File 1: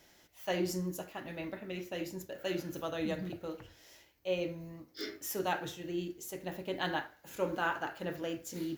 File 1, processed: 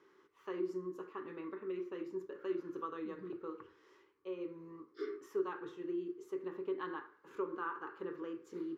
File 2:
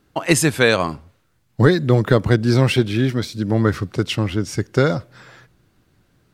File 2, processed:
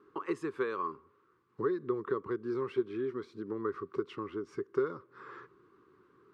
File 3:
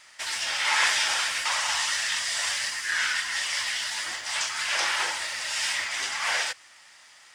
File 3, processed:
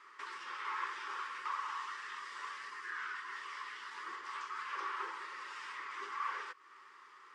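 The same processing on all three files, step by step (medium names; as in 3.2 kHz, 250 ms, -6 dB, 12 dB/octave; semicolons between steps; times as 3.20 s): compression 2.5:1, threshold -40 dBFS; two resonant band-passes 670 Hz, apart 1.5 oct; trim +10 dB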